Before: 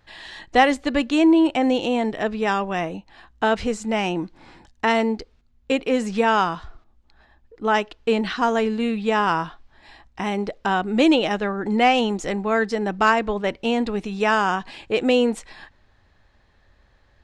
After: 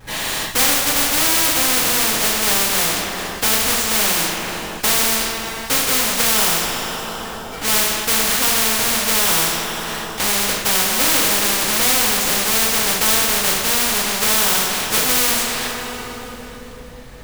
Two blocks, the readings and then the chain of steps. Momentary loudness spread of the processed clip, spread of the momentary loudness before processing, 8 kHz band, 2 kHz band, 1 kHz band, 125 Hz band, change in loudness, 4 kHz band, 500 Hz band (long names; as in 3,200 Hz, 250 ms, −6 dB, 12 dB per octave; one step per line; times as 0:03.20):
10 LU, 10 LU, +27.0 dB, +5.0 dB, −1.0 dB, +2.0 dB, +6.0 dB, +13.0 dB, −4.0 dB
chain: each half-wave held at its own peak
coupled-rooms reverb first 0.52 s, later 3.2 s, from −20 dB, DRR −7 dB
every bin compressed towards the loudest bin 4 to 1
level −10.5 dB